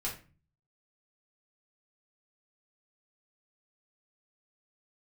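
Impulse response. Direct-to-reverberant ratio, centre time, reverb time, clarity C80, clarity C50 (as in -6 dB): -4.5 dB, 25 ms, 0.35 s, 14.0 dB, 8.0 dB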